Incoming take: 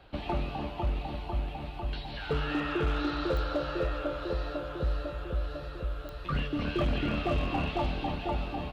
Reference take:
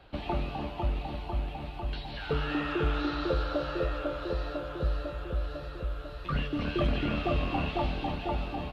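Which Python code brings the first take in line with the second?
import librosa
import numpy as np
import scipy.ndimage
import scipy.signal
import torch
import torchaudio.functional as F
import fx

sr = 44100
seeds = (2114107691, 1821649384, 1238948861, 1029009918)

y = fx.fix_declip(x, sr, threshold_db=-22.5)
y = fx.fix_declick_ar(y, sr, threshold=10.0)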